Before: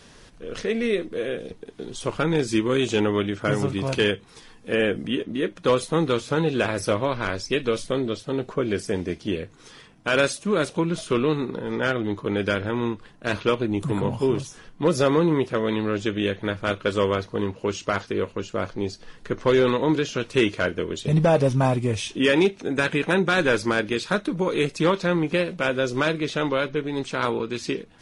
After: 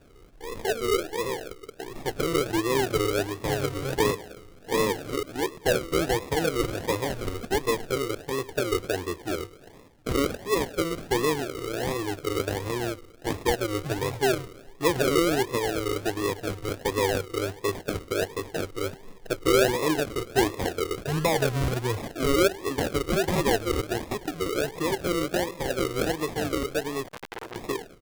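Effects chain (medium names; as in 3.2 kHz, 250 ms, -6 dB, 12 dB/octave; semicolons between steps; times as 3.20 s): 23.88–24.92 s: compression, threshold -20 dBFS, peak gain reduction 5.5 dB; comb 2.4 ms, depth 99%; thinning echo 104 ms, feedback 73%, high-pass 340 Hz, level -17 dB; decimation with a swept rate 41×, swing 60% 1.4 Hz; 27.07–27.56 s: transformer saturation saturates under 2.4 kHz; trim -6.5 dB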